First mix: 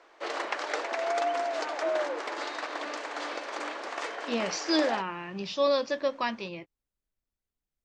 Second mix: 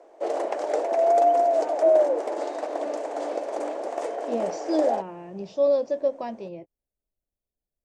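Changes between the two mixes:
background +6.0 dB
master: add drawn EQ curve 260 Hz 0 dB, 660 Hz +6 dB, 1,200 Hz −14 dB, 4,200 Hz −16 dB, 9,900 Hz +1 dB

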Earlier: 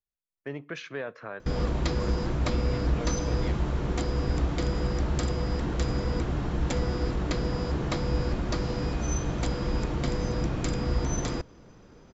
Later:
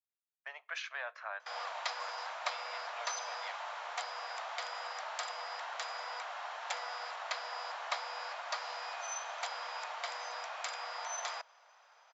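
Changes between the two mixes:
background: add high-frequency loss of the air 69 metres
master: add Butterworth high-pass 670 Hz 48 dB per octave

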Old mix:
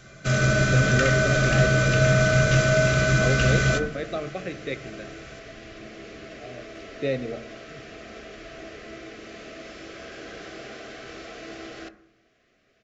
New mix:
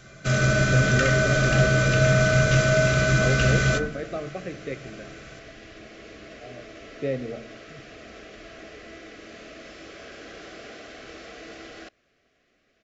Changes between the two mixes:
speech: add high-frequency loss of the air 480 metres
second sound: send off

